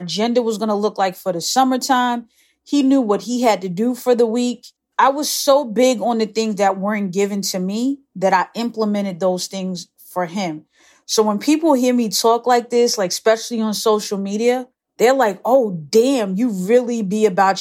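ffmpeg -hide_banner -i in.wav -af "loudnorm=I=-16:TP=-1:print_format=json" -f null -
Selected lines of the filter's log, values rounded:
"input_i" : "-17.7",
"input_tp" : "-3.4",
"input_lra" : "3.1",
"input_thresh" : "-27.9",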